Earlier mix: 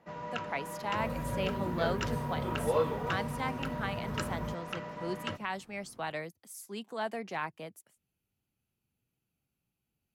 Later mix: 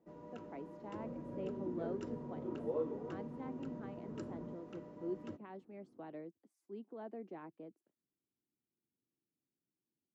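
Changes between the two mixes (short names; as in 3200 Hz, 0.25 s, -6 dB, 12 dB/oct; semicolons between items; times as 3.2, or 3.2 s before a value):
first sound: remove BPF 130–2400 Hz; master: add band-pass 320 Hz, Q 2.8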